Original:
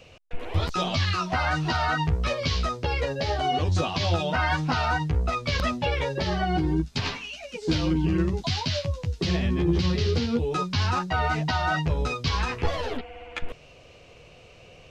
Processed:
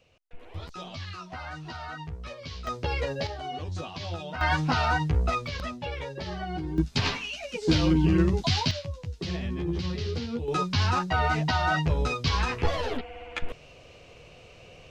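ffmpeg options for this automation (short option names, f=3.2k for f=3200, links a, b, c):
-af "asetnsamples=n=441:p=0,asendcmd='2.67 volume volume -2.5dB;3.27 volume volume -10.5dB;4.41 volume volume 0dB;5.47 volume volume -8.5dB;6.78 volume volume 2dB;8.71 volume volume -7dB;10.48 volume volume 0dB',volume=-13.5dB"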